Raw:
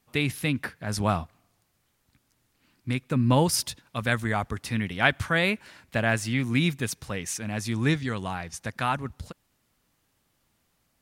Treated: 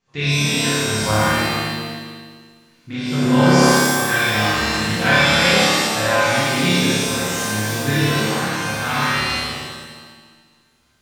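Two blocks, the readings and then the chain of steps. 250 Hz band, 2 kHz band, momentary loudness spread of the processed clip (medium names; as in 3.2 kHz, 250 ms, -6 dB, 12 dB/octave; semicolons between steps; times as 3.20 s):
+9.0 dB, +11.0 dB, 13 LU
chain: resampled via 16 kHz; flutter echo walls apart 4.8 m, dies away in 1.5 s; pitch-shifted reverb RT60 1.1 s, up +7 st, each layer -2 dB, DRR -7 dB; trim -6 dB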